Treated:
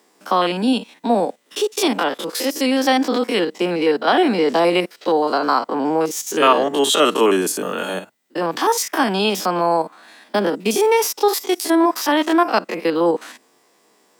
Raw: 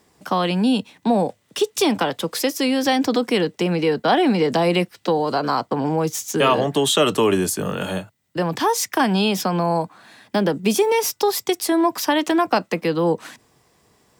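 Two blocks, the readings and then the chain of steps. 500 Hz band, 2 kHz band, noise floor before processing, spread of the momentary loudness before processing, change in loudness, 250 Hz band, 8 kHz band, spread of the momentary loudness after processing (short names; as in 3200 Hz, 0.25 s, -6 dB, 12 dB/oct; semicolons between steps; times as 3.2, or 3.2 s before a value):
+2.0 dB, +2.5 dB, -63 dBFS, 7 LU, +2.0 dB, +0.5 dB, +1.5 dB, 8 LU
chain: stepped spectrum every 50 ms; HPF 240 Hz 24 dB/oct; dynamic EQ 1300 Hz, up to +4 dB, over -35 dBFS, Q 2.2; gain +3.5 dB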